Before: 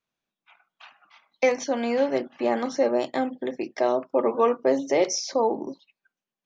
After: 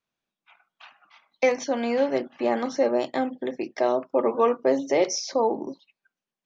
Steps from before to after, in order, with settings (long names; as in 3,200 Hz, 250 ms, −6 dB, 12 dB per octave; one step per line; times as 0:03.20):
low-pass filter 7,800 Hz 12 dB per octave